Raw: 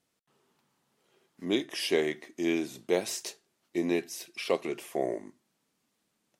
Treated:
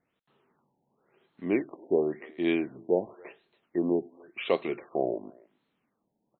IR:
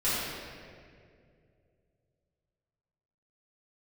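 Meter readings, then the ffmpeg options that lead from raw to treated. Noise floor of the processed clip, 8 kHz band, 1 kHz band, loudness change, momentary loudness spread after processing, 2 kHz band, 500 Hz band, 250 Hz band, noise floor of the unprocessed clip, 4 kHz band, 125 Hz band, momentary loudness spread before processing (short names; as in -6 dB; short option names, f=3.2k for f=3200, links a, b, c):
-80 dBFS, under -40 dB, +2.0 dB, +1.5 dB, 11 LU, -2.5 dB, +2.0 dB, +2.0 dB, -78 dBFS, -8.5 dB, +2.0 dB, 9 LU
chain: -filter_complex "[0:a]asplit=2[a][b];[b]adelay=280,highpass=300,lowpass=3.4k,asoftclip=type=hard:threshold=-22.5dB,volume=-25dB[c];[a][c]amix=inputs=2:normalize=0,afftfilt=real='re*lt(b*sr/1024,930*pow(4400/930,0.5+0.5*sin(2*PI*0.93*pts/sr)))':imag='im*lt(b*sr/1024,930*pow(4400/930,0.5+0.5*sin(2*PI*0.93*pts/sr)))':win_size=1024:overlap=0.75,volume=2dB"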